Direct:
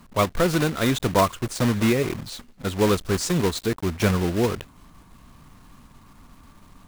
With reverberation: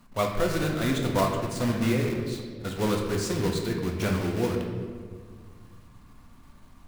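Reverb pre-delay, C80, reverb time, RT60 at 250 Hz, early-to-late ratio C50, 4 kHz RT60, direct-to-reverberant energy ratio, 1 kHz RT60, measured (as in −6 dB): 3 ms, 5.5 dB, 1.8 s, 2.5 s, 4.0 dB, 1.1 s, 0.5 dB, 1.5 s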